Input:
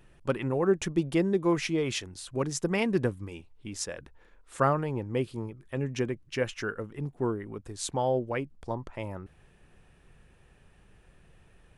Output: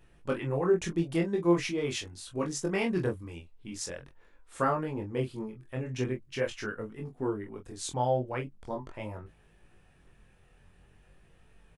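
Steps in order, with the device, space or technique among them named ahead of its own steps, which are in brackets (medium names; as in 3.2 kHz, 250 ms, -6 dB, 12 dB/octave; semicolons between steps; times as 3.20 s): double-tracked vocal (doubling 23 ms -6.5 dB; chorus 0.43 Hz, delay 18.5 ms, depth 6 ms)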